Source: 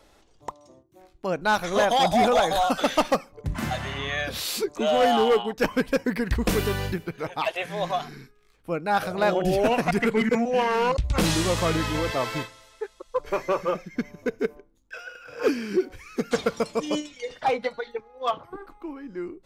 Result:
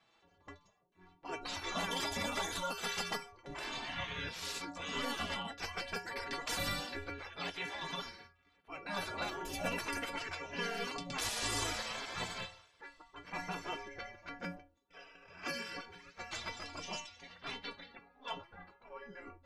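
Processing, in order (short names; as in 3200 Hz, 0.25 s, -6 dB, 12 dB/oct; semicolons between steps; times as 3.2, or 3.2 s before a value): metallic resonator 84 Hz, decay 0.68 s, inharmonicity 0.03; low-pass opened by the level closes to 2400 Hz, open at -29.5 dBFS; transient shaper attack -5 dB, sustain 0 dB; compressor 4:1, threshold -37 dBFS, peak gain reduction 9.5 dB; spectral gate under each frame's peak -15 dB weak; gain +13 dB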